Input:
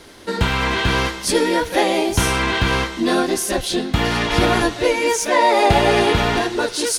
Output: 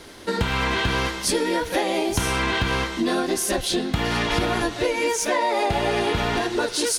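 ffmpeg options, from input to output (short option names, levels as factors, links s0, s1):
-af "acompressor=threshold=0.112:ratio=6"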